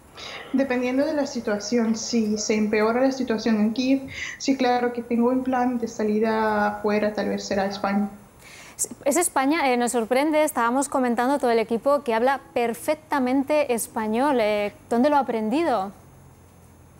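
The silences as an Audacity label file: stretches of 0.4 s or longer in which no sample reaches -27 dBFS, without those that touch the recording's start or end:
8.080000	8.790000	silence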